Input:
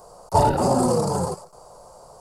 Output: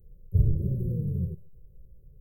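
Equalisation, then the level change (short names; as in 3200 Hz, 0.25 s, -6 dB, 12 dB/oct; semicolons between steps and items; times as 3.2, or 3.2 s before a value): inverse Chebyshev band-stop 700–9000 Hz, stop band 50 dB; low shelf 81 Hz +12 dB; fixed phaser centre 960 Hz, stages 6; 0.0 dB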